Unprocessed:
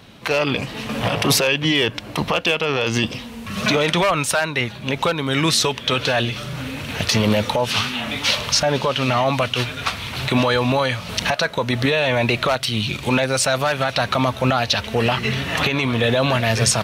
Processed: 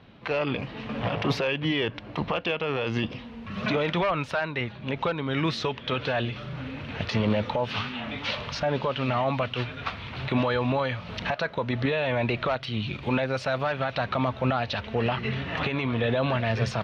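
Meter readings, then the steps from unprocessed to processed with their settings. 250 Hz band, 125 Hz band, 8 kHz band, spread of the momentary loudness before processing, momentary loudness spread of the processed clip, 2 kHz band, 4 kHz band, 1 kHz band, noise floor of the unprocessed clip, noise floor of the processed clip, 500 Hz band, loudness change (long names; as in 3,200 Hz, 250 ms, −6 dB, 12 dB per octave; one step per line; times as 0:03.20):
−6.5 dB, −6.0 dB, −26.5 dB, 7 LU, 7 LU, −9.0 dB, −13.0 dB, −7.5 dB, −35 dBFS, −42 dBFS, −7.0 dB, −8.5 dB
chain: high-frequency loss of the air 280 metres
level −6 dB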